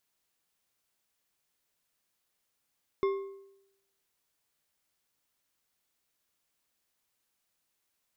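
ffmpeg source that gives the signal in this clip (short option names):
-f lavfi -i "aevalsrc='0.0708*pow(10,-3*t/0.84)*sin(2*PI*392*t)+0.0251*pow(10,-3*t/0.62)*sin(2*PI*1080.7*t)+0.00891*pow(10,-3*t/0.506)*sin(2*PI*2118.4*t)+0.00316*pow(10,-3*t/0.435)*sin(2*PI*3501.7*t)+0.00112*pow(10,-3*t/0.386)*sin(2*PI*5229.3*t)':d=1.55:s=44100"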